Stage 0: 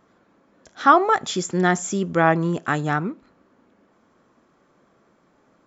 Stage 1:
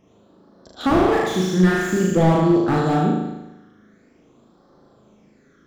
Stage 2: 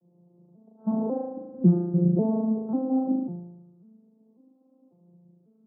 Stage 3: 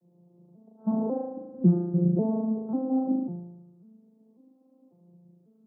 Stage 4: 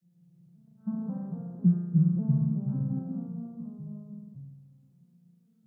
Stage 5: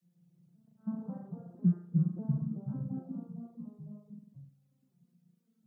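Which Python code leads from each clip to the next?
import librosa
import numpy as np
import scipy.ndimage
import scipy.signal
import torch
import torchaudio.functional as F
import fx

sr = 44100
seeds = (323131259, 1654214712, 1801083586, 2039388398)

y1 = fx.phaser_stages(x, sr, stages=12, low_hz=770.0, high_hz=2400.0, hz=0.48, feedback_pct=30)
y1 = fx.room_flutter(y1, sr, wall_m=6.5, rt60_s=1.0)
y1 = fx.slew_limit(y1, sr, full_power_hz=72.0)
y1 = F.gain(torch.from_numpy(y1), 4.0).numpy()
y2 = fx.vocoder_arp(y1, sr, chord='major triad', root=53, every_ms=545)
y2 = scipy.signal.sosfilt(scipy.signal.bessel(8, 550.0, 'lowpass', norm='mag', fs=sr, output='sos'), y2)
y2 = F.gain(torch.from_numpy(y2), -5.0).numpy()
y3 = fx.rider(y2, sr, range_db=10, speed_s=2.0)
y3 = F.gain(torch.from_numpy(y3), -2.0).numpy()
y4 = fx.curve_eq(y3, sr, hz=(140.0, 200.0, 330.0, 500.0, 930.0, 1500.0), db=(0, -3, -20, -21, -17, 2))
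y4 = fx.echo_pitch(y4, sr, ms=107, semitones=-2, count=2, db_per_echo=-3.0)
y5 = fx.dereverb_blind(y4, sr, rt60_s=0.93)
y5 = fx.low_shelf(y5, sr, hz=130.0, db=-11.5)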